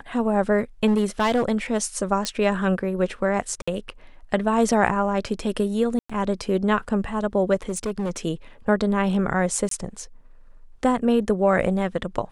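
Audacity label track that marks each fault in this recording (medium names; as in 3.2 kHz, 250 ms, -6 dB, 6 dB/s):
0.860000	1.450000	clipped -15.5 dBFS
2.250000	2.250000	pop -10 dBFS
3.620000	3.670000	dropout 55 ms
5.990000	6.090000	dropout 105 ms
7.690000	8.180000	clipped -22 dBFS
9.690000	9.710000	dropout 23 ms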